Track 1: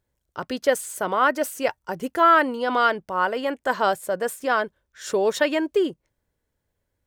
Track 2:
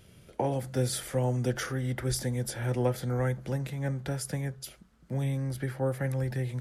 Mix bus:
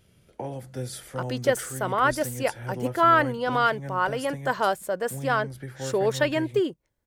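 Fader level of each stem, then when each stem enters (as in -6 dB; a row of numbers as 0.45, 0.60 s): -2.5, -5.0 dB; 0.80, 0.00 s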